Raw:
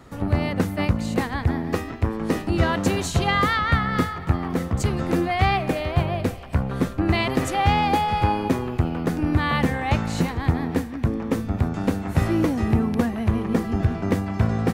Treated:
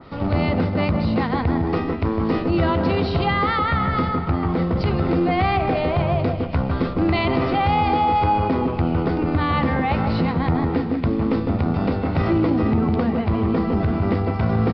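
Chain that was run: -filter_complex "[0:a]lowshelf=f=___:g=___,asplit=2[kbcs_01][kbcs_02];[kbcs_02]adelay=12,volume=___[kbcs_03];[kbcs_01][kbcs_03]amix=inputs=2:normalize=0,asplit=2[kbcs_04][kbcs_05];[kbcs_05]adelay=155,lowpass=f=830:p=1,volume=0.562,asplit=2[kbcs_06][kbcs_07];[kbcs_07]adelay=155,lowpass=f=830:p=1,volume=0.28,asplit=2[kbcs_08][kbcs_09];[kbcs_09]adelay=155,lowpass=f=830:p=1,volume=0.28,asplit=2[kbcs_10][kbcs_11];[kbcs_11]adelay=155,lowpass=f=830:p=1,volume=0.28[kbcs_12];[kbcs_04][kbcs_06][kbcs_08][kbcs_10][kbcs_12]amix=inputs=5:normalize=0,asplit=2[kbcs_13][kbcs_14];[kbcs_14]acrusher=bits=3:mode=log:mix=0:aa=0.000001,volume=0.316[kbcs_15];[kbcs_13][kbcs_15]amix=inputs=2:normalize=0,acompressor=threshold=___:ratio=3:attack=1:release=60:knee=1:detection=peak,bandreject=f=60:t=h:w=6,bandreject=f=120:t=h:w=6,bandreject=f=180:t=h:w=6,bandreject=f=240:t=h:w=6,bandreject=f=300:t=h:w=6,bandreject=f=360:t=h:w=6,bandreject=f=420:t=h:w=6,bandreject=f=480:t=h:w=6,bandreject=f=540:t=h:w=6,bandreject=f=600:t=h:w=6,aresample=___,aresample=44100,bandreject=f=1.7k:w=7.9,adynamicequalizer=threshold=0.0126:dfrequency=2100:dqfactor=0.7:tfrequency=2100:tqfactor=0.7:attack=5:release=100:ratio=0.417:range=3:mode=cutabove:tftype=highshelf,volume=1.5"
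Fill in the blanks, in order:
110, -5, 0.211, 0.126, 11025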